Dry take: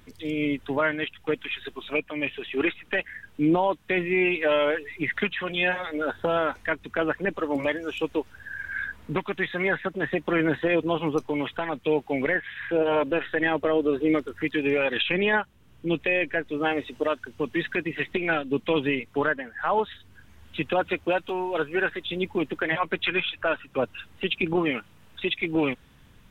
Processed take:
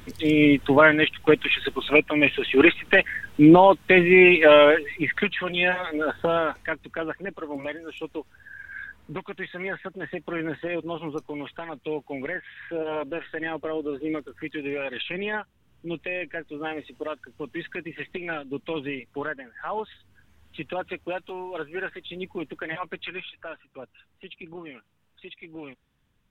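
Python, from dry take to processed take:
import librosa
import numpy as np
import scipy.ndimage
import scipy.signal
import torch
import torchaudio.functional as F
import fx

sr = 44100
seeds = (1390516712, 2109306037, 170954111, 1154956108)

y = fx.gain(x, sr, db=fx.line((4.61, 9.0), (5.08, 2.0), (6.26, 2.0), (7.25, -6.5), (22.79, -6.5), (23.86, -16.0)))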